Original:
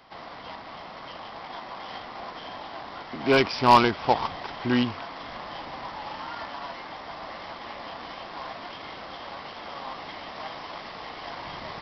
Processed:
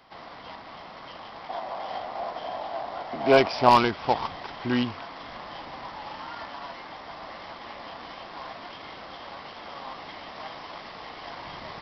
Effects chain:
0:01.49–0:03.69: parametric band 670 Hz +12 dB 0.75 octaves
level −2 dB

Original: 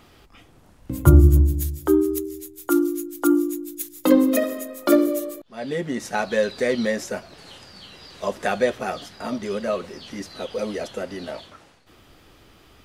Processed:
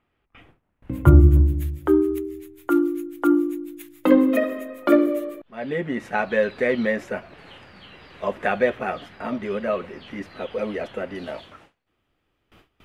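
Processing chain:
noise gate with hold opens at −40 dBFS
high shelf with overshoot 3,600 Hz −13.5 dB, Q 1.5, from 0:11.15 −6.5 dB

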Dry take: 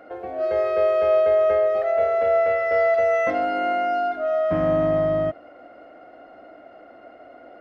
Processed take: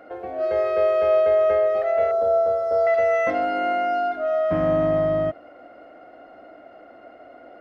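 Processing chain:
0:02.11–0:02.87: Butterworth band-reject 2,300 Hz, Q 0.79

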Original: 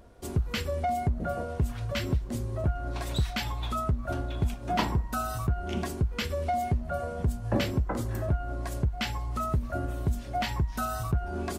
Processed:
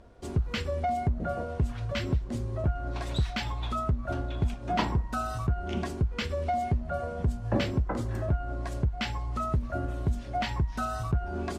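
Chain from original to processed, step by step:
high-frequency loss of the air 58 metres

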